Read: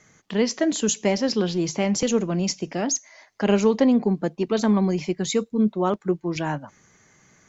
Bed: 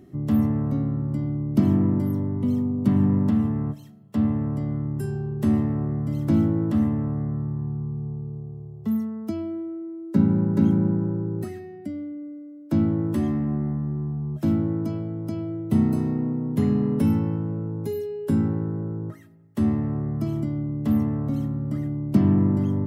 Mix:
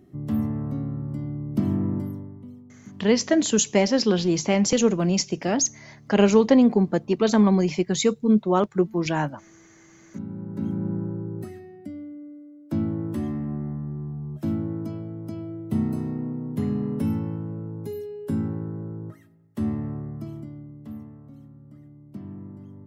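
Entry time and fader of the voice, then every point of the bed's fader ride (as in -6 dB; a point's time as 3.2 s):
2.70 s, +2.0 dB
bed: 1.99 s -4.5 dB
2.66 s -24 dB
9.72 s -24 dB
10.96 s -4.5 dB
19.87 s -4.5 dB
21.22 s -20 dB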